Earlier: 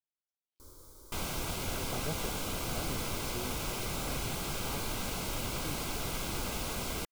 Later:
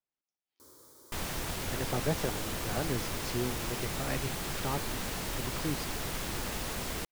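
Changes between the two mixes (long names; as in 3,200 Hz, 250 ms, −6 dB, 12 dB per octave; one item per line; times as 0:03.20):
speech +8.5 dB
first sound: add high-pass filter 170 Hz 12 dB per octave
master: remove Butterworth band-reject 1,800 Hz, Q 5.4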